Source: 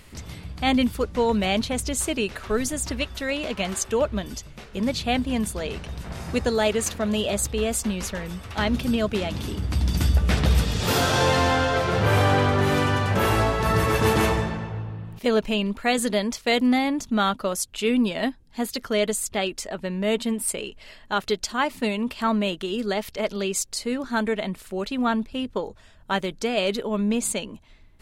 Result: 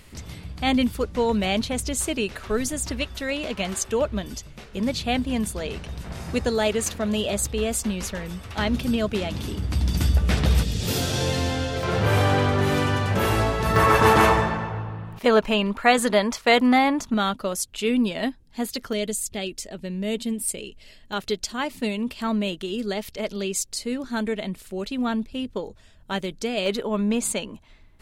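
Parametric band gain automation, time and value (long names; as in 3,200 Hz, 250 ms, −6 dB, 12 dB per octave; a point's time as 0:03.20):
parametric band 1,100 Hz 1.9 octaves
−1.5 dB
from 0:10.63 −13 dB
from 0:11.83 −2 dB
from 0:13.76 +9 dB
from 0:17.14 −2.5 dB
from 0:18.93 −12.5 dB
from 0:21.13 −6 dB
from 0:26.66 +2 dB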